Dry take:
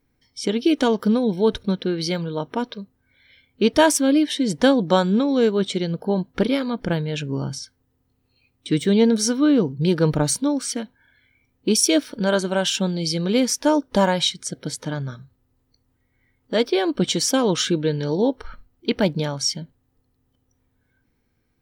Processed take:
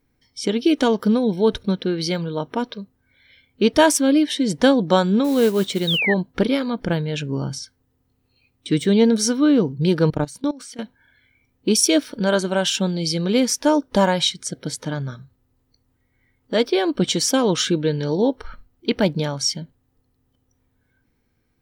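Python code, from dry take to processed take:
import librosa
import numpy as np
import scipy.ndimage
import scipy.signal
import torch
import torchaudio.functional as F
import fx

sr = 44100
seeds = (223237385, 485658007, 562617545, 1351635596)

y = fx.level_steps(x, sr, step_db=20, at=(10.1, 10.79))
y = fx.mod_noise(y, sr, seeds[0], snr_db=21, at=(5.24, 6.0))
y = fx.spec_paint(y, sr, seeds[1], shape='fall', start_s=5.87, length_s=0.27, low_hz=1700.0, high_hz=3900.0, level_db=-22.0)
y = F.gain(torch.from_numpy(y), 1.0).numpy()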